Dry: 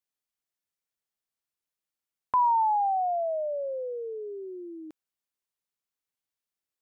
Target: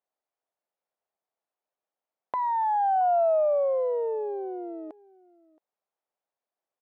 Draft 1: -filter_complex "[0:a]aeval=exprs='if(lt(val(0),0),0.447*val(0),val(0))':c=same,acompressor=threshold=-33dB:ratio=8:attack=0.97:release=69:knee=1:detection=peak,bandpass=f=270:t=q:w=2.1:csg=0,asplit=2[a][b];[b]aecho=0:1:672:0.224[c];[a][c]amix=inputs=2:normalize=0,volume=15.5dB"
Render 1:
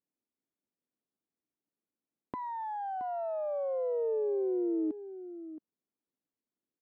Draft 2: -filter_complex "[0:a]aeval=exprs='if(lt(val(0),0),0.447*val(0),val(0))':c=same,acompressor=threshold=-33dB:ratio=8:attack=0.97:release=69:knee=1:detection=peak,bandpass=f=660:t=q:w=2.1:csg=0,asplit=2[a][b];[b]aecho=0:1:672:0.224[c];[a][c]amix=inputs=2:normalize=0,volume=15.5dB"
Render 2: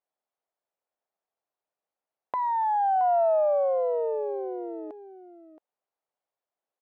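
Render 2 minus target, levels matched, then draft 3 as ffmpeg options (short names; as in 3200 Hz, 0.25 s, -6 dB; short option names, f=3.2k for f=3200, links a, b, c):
echo-to-direct +10.5 dB
-filter_complex "[0:a]aeval=exprs='if(lt(val(0),0),0.447*val(0),val(0))':c=same,acompressor=threshold=-33dB:ratio=8:attack=0.97:release=69:knee=1:detection=peak,bandpass=f=660:t=q:w=2.1:csg=0,asplit=2[a][b];[b]aecho=0:1:672:0.0668[c];[a][c]amix=inputs=2:normalize=0,volume=15.5dB"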